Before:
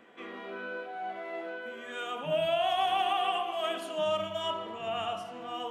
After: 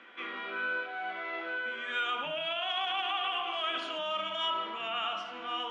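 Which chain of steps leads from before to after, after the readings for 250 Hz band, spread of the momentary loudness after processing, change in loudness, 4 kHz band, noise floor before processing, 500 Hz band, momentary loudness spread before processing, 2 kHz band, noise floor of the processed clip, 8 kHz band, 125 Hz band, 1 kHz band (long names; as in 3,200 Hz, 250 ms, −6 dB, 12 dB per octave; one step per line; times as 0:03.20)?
−4.5 dB, 6 LU, −0.5 dB, +3.5 dB, −44 dBFS, −7.5 dB, 12 LU, +6.0 dB, −43 dBFS, can't be measured, −13.0 dB, −3.0 dB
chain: brickwall limiter −27.5 dBFS, peak gain reduction 9 dB
loudspeaker in its box 340–5,600 Hz, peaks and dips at 440 Hz −8 dB, 680 Hz −7 dB, 1,400 Hz +7 dB, 2,300 Hz +6 dB, 3,300 Hz +5 dB
level +3 dB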